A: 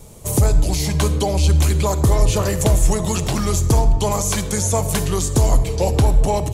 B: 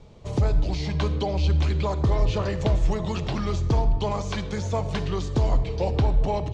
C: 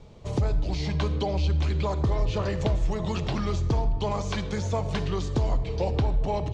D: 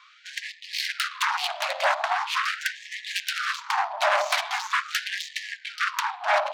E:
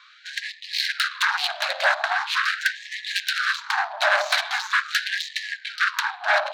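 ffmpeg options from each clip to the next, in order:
-af "lowpass=f=4.5k:w=0.5412,lowpass=f=4.5k:w=1.3066,volume=-6.5dB"
-af "acompressor=threshold=-23dB:ratio=2"
-af "adynamicsmooth=sensitivity=7.5:basefreq=3.2k,aeval=exprs='0.178*sin(PI/2*3.98*val(0)/0.178)':c=same,afftfilt=real='re*gte(b*sr/1024,550*pow(1700/550,0.5+0.5*sin(2*PI*0.42*pts/sr)))':imag='im*gte(b*sr/1024,550*pow(1700/550,0.5+0.5*sin(2*PI*0.42*pts/sr)))':win_size=1024:overlap=0.75"
-af "equalizer=f=1k:t=o:w=0.33:g=-4,equalizer=f=1.6k:t=o:w=0.33:g=9,equalizer=f=4k:t=o:w=0.33:g=8"

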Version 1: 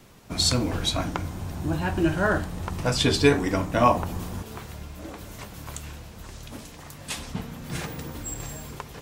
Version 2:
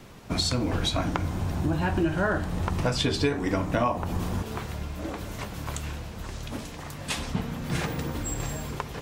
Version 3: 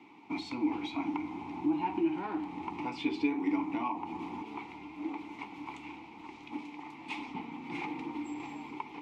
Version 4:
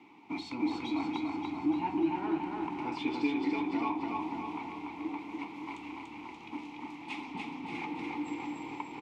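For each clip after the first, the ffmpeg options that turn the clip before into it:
-af "acompressor=threshold=-27dB:ratio=5,highshelf=f=6.1k:g=-7.5,volume=5dB"
-filter_complex "[0:a]asplit=2[a][b];[b]highpass=f=720:p=1,volume=16dB,asoftclip=type=tanh:threshold=-8dB[c];[a][c]amix=inputs=2:normalize=0,lowpass=f=5.2k:p=1,volume=-6dB,asplit=3[d][e][f];[d]bandpass=f=300:t=q:w=8,volume=0dB[g];[e]bandpass=f=870:t=q:w=8,volume=-6dB[h];[f]bandpass=f=2.24k:t=q:w=8,volume=-9dB[i];[g][h][i]amix=inputs=3:normalize=0"
-af "aecho=1:1:290|580|870|1160|1450|1740|2030|2320:0.708|0.389|0.214|0.118|0.0648|0.0356|0.0196|0.0108,volume=-1dB"

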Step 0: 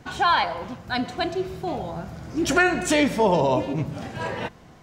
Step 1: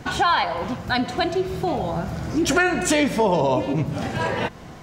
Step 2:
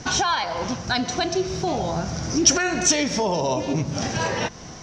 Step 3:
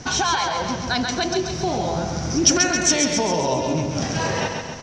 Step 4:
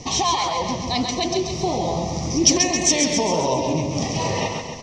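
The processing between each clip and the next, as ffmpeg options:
-af "acompressor=threshold=-32dB:ratio=2,volume=9dB"
-af "alimiter=limit=-14.5dB:level=0:latency=1:release=195,lowpass=f=5.8k:t=q:w=9.3"
-af "aecho=1:1:135|270|405|540|675|810|945:0.562|0.309|0.17|0.0936|0.0515|0.0283|0.0156"
-af "asuperstop=centerf=1500:order=8:qfactor=2.4,flanger=delay=1.9:depth=9.7:regen=80:speed=1.7:shape=sinusoidal,volume=5dB"

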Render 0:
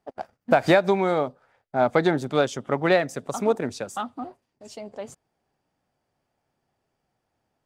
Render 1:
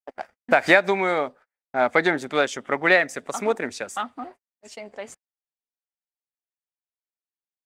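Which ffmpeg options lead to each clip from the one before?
-af "agate=range=-35dB:threshold=-44dB:ratio=16:detection=peak,equalizer=f=125:t=o:w=1:g=-11,equalizer=f=2k:t=o:w=1:g=11,equalizer=f=8k:t=o:w=1:g=4,volume=-1dB"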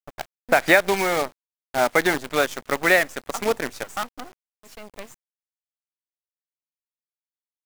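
-af "acrusher=bits=5:dc=4:mix=0:aa=0.000001"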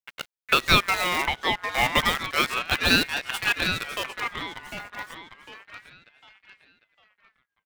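-filter_complex "[0:a]asplit=2[a][b];[b]adelay=752,lowpass=f=3.4k:p=1,volume=-6dB,asplit=2[c][d];[d]adelay=752,lowpass=f=3.4k:p=1,volume=0.39,asplit=2[e][f];[f]adelay=752,lowpass=f=3.4k:p=1,volume=0.39,asplit=2[g][h];[h]adelay=752,lowpass=f=3.4k:p=1,volume=0.39,asplit=2[i][j];[j]adelay=752,lowpass=f=3.4k:p=1,volume=0.39[k];[c][e][g][i][k]amix=inputs=5:normalize=0[l];[a][l]amix=inputs=2:normalize=0,aeval=exprs='val(0)*sin(2*PI*1800*n/s+1800*0.2/0.31*sin(2*PI*0.31*n/s))':c=same"

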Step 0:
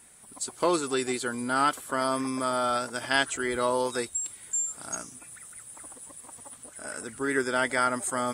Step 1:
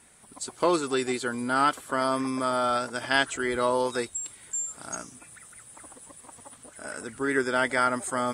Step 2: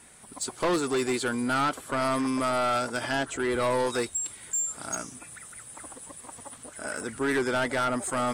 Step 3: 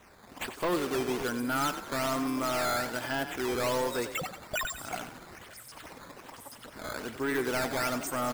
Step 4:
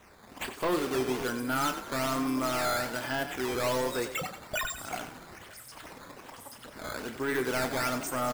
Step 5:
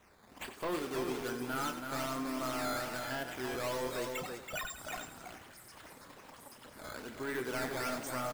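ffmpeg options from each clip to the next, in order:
-af "highshelf=f=9.5k:g=-11,volume=1.5dB"
-filter_complex "[0:a]acrossover=split=1000[a][b];[b]alimiter=limit=-20.5dB:level=0:latency=1:release=464[c];[a][c]amix=inputs=2:normalize=0,asoftclip=type=tanh:threshold=-25dB,volume=4dB"
-filter_complex "[0:a]acrusher=samples=9:mix=1:aa=0.000001:lfo=1:lforange=14.4:lforate=1.2,asplit=2[a][b];[b]asplit=5[c][d][e][f][g];[c]adelay=92,afreqshift=31,volume=-11dB[h];[d]adelay=184,afreqshift=62,volume=-17.6dB[i];[e]adelay=276,afreqshift=93,volume=-24.1dB[j];[f]adelay=368,afreqshift=124,volume=-30.7dB[k];[g]adelay=460,afreqshift=155,volume=-37.2dB[l];[h][i][j][k][l]amix=inputs=5:normalize=0[m];[a][m]amix=inputs=2:normalize=0,volume=-4dB"
-filter_complex "[0:a]asplit=2[a][b];[b]adelay=31,volume=-10.5dB[c];[a][c]amix=inputs=2:normalize=0"
-af "aecho=1:1:329:0.531,volume=-7.5dB"

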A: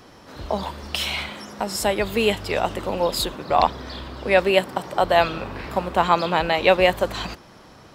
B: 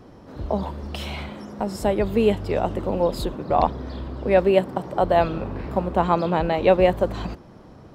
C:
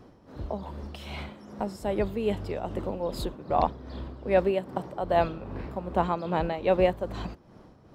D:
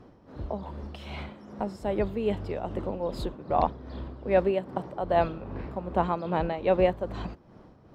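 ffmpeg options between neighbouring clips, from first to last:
-af "tiltshelf=f=970:g=8.5,volume=-3.5dB"
-af "tremolo=f=2.5:d=0.56,volume=-4.5dB"
-af "lowpass=f=3.7k:p=1"

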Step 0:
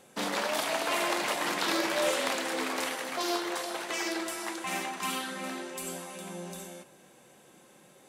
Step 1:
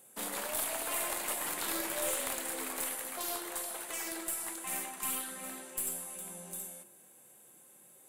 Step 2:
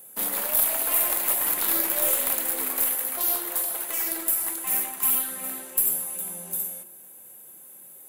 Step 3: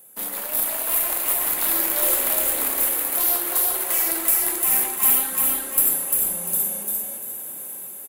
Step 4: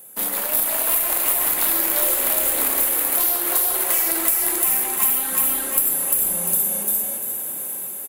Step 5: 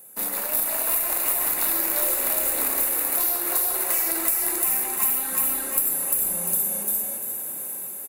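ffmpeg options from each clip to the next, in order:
-filter_complex "[0:a]bandreject=f=50:t=h:w=6,bandreject=f=100:t=h:w=6,bandreject=f=150:t=h:w=6,bandreject=f=200:t=h:w=6,bandreject=f=250:t=h:w=6,bandreject=f=300:t=h:w=6,bandreject=f=350:t=h:w=6,acrossover=split=2800[a][b];[b]aexciter=amount=3.4:drive=9.5:freq=7.7k[c];[a][c]amix=inputs=2:normalize=0,aeval=exprs='(tanh(4.47*val(0)+0.55)-tanh(0.55))/4.47':c=same,volume=-6.5dB"
-af "aexciter=amount=5.5:drive=2.6:freq=11k,volume=5dB"
-filter_complex "[0:a]dynaudnorm=f=350:g=5:m=15dB,asplit=2[a][b];[b]asplit=4[c][d][e][f];[c]adelay=347,afreqshift=30,volume=-3dB[g];[d]adelay=694,afreqshift=60,volume=-13.2dB[h];[e]adelay=1041,afreqshift=90,volume=-23.3dB[i];[f]adelay=1388,afreqshift=120,volume=-33.5dB[j];[g][h][i][j]amix=inputs=4:normalize=0[k];[a][k]amix=inputs=2:normalize=0,volume=-2dB"
-af "acompressor=threshold=-21dB:ratio=6,volume=5.5dB"
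-af "bandreject=f=3.2k:w=5.7,volume=-3.5dB"

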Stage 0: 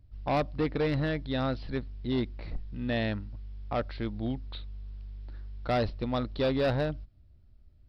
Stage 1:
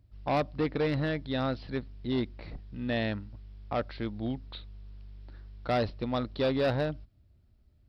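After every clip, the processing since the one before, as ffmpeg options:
-af "highpass=f=81:p=1"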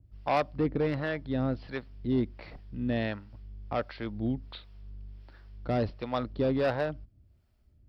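-filter_complex "[0:a]equalizer=f=3.9k:w=7.5:g=-6,acrossover=split=490[a][b];[a]aeval=exprs='val(0)*(1-0.7/2+0.7/2*cos(2*PI*1.4*n/s))':c=same[c];[b]aeval=exprs='val(0)*(1-0.7/2-0.7/2*cos(2*PI*1.4*n/s))':c=same[d];[c][d]amix=inputs=2:normalize=0,adynamicequalizer=threshold=0.00282:dfrequency=2200:dqfactor=0.7:tfrequency=2200:tqfactor=0.7:attack=5:release=100:ratio=0.375:range=3:mode=cutabove:tftype=highshelf,volume=3.5dB"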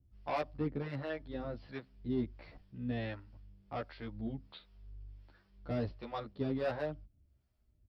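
-filter_complex "[0:a]asplit=2[a][b];[b]adelay=11.9,afreqshift=-1.1[c];[a][c]amix=inputs=2:normalize=1,volume=-5dB"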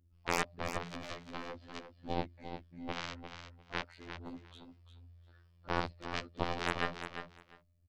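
-af "afftfilt=real='hypot(re,im)*cos(PI*b)':imag='0':win_size=2048:overlap=0.75,aeval=exprs='0.0944*(cos(1*acos(clip(val(0)/0.0944,-1,1)))-cos(1*PI/2))+0.00266*(cos(5*acos(clip(val(0)/0.0944,-1,1)))-cos(5*PI/2))+0.0168*(cos(6*acos(clip(val(0)/0.0944,-1,1)))-cos(6*PI/2))+0.0237*(cos(7*acos(clip(val(0)/0.0944,-1,1)))-cos(7*PI/2))+0.0075*(cos(8*acos(clip(val(0)/0.0944,-1,1)))-cos(8*PI/2))':c=same,aecho=1:1:350|700:0.355|0.0568,volume=6dB"

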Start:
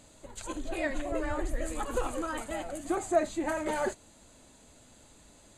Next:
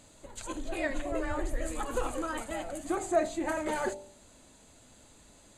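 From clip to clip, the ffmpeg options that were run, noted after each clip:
-af "bandreject=f=48.96:t=h:w=4,bandreject=f=97.92:t=h:w=4,bandreject=f=146.88:t=h:w=4,bandreject=f=195.84:t=h:w=4,bandreject=f=244.8:t=h:w=4,bandreject=f=293.76:t=h:w=4,bandreject=f=342.72:t=h:w=4,bandreject=f=391.68:t=h:w=4,bandreject=f=440.64:t=h:w=4,bandreject=f=489.6:t=h:w=4,bandreject=f=538.56:t=h:w=4,bandreject=f=587.52:t=h:w=4,bandreject=f=636.48:t=h:w=4,bandreject=f=685.44:t=h:w=4,bandreject=f=734.4:t=h:w=4,bandreject=f=783.36:t=h:w=4,bandreject=f=832.32:t=h:w=4,bandreject=f=881.28:t=h:w=4,bandreject=f=930.24:t=h:w=4"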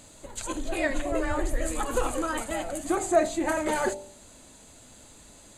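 -af "highshelf=f=6.3k:g=4.5,volume=5dB"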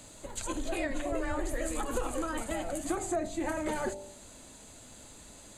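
-filter_complex "[0:a]acrossover=split=200|440[a][b][c];[a]acompressor=threshold=-33dB:ratio=4[d];[b]acompressor=threshold=-38dB:ratio=4[e];[c]acompressor=threshold=-35dB:ratio=4[f];[d][e][f]amix=inputs=3:normalize=0"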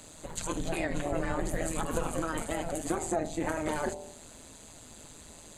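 -af "tremolo=f=160:d=0.788,volume=4.5dB"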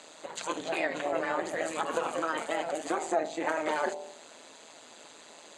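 -af "highpass=460,lowpass=4.9k,volume=4.5dB"

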